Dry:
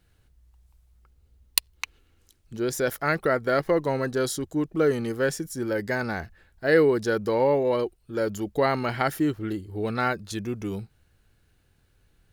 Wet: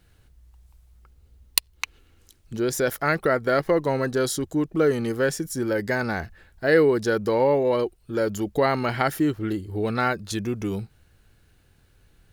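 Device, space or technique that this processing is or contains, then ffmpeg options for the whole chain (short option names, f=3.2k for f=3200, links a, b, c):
parallel compression: -filter_complex "[0:a]asplit=2[a][b];[b]acompressor=threshold=-32dB:ratio=6,volume=-1.5dB[c];[a][c]amix=inputs=2:normalize=0"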